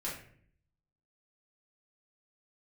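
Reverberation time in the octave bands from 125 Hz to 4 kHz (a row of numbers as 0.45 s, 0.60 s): 0.95 s, 0.85 s, 0.65 s, 0.50 s, 0.55 s, 0.40 s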